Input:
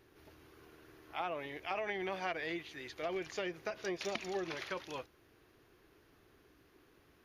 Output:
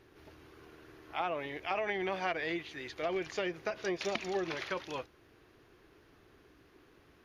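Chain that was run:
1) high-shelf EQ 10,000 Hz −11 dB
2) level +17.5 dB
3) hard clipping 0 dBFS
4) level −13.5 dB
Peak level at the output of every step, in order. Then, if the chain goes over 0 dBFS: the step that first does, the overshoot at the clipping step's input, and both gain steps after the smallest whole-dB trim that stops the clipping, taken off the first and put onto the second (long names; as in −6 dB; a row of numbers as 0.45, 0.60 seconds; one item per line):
−23.5, −6.0, −6.0, −19.5 dBFS
no step passes full scale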